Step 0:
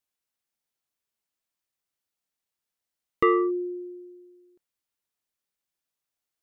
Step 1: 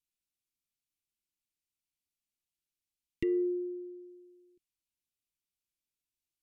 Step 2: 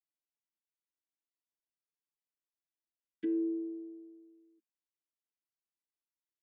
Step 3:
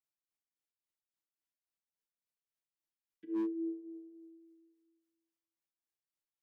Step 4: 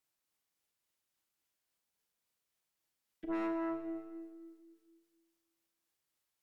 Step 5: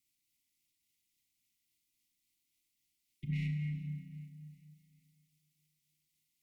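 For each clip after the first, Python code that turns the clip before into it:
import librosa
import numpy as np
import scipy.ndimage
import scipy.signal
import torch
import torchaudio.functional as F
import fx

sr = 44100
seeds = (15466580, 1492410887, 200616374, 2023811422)

y1 = scipy.signal.sosfilt(scipy.signal.ellip(3, 1.0, 40, [350.0, 2300.0], 'bandstop', fs=sr, output='sos'), x)
y1 = fx.env_lowpass_down(y1, sr, base_hz=920.0, full_db=-27.0)
y1 = fx.low_shelf(y1, sr, hz=91.0, db=8.0)
y1 = y1 * librosa.db_to_amplitude(-4.5)
y2 = fx.chord_vocoder(y1, sr, chord='bare fifth', root=57)
y2 = y2 + 0.92 * np.pad(y2, (int(7.1 * sr / 1000.0), 0))[:len(y2)]
y3 = fx.tremolo_shape(y2, sr, shape='triangle', hz=3.6, depth_pct=100)
y3 = fx.room_shoebox(y3, sr, seeds[0], volume_m3=740.0, walls='mixed', distance_m=0.67)
y3 = fx.slew_limit(y3, sr, full_power_hz=9.2)
y4 = fx.clip_asym(y3, sr, top_db=-34.0, bottom_db=-32.0)
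y4 = fx.cheby_harmonics(y4, sr, harmonics=(4, 5, 8), levels_db=(-12, -14, -26), full_scale_db=-31.5)
y4 = fx.rev_schroeder(y4, sr, rt60_s=1.5, comb_ms=30, drr_db=5.5)
y4 = y4 * librosa.db_to_amplitude(2.0)
y5 = y4 * np.sin(2.0 * np.pi * 180.0 * np.arange(len(y4)) / sr)
y5 = fx.brickwall_bandstop(y5, sr, low_hz=360.0, high_hz=1900.0)
y5 = fx.echo_feedback(y5, sr, ms=392, feedback_pct=48, wet_db=-20.5)
y5 = y5 * librosa.db_to_amplitude(7.5)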